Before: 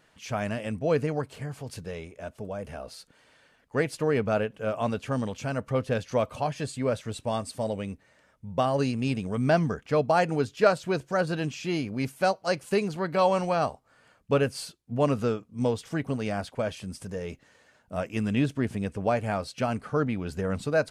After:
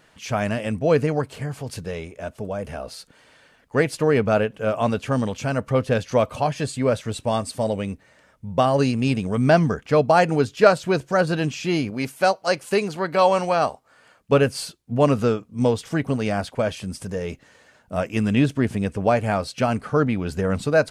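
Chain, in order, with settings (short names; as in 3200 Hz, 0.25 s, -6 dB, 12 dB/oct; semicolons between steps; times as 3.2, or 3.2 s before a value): 11.9–14.32 low shelf 200 Hz -9.5 dB; gain +6.5 dB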